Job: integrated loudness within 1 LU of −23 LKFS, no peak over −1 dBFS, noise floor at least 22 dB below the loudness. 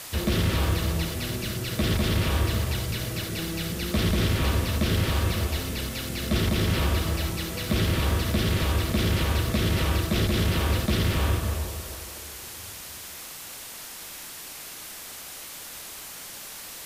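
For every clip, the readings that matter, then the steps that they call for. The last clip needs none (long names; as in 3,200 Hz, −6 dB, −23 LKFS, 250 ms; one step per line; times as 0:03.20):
background noise floor −40 dBFS; target noise floor −50 dBFS; integrated loudness −27.5 LKFS; sample peak −13.0 dBFS; target loudness −23.0 LKFS
→ broadband denoise 10 dB, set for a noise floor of −40 dBFS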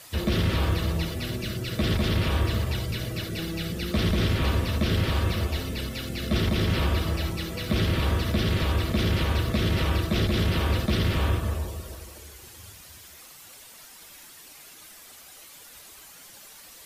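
background noise floor −48 dBFS; target noise floor −49 dBFS
→ broadband denoise 6 dB, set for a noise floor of −48 dBFS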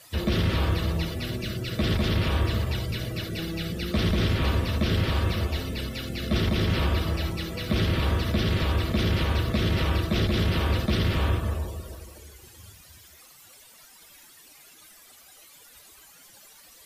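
background noise floor −52 dBFS; integrated loudness −26.5 LKFS; sample peak −14.0 dBFS; target loudness −23.0 LKFS
→ level +3.5 dB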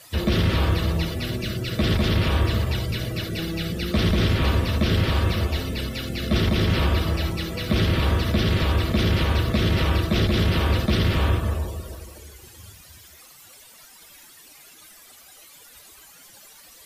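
integrated loudness −23.0 LKFS; sample peak −10.5 dBFS; background noise floor −49 dBFS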